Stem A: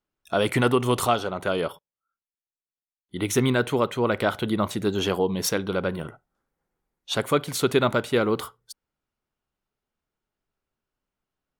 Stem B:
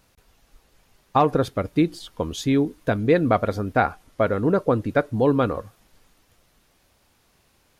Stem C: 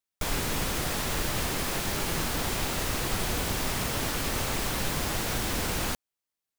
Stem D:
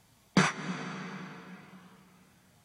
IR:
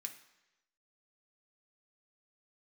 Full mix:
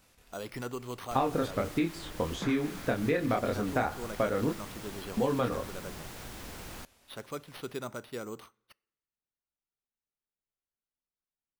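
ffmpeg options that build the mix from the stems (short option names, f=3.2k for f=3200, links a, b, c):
-filter_complex "[0:a]acrusher=samples=6:mix=1:aa=0.000001,volume=-17.5dB,asplit=2[a][b];[b]volume=-13dB[c];[1:a]flanger=delay=22.5:depth=4.4:speed=1.7,volume=-0.5dB,asplit=3[d][e][f];[d]atrim=end=4.53,asetpts=PTS-STARTPTS,afade=t=out:st=4.526:d=0.004:c=hsin[g];[e]atrim=start=4.53:end=5.17,asetpts=PTS-STARTPTS,volume=0[h];[f]atrim=start=5.17,asetpts=PTS-STARTPTS,afade=t=in:d=0.004:c=hsin[i];[g][h][i]concat=n=3:v=0:a=1,asplit=2[j][k];[k]volume=-3.5dB[l];[2:a]adelay=900,volume=-14dB[m];[3:a]alimiter=limit=-17.5dB:level=0:latency=1:release=278,adelay=2050,volume=-8.5dB[n];[4:a]atrim=start_sample=2205[o];[c][l]amix=inputs=2:normalize=0[p];[p][o]afir=irnorm=-1:irlink=0[q];[a][j][m][n][q]amix=inputs=5:normalize=0,acrossover=split=1000|2500[r][s][t];[r]acompressor=threshold=-27dB:ratio=4[u];[s]acompressor=threshold=-37dB:ratio=4[v];[t]acompressor=threshold=-46dB:ratio=4[w];[u][v][w]amix=inputs=3:normalize=0"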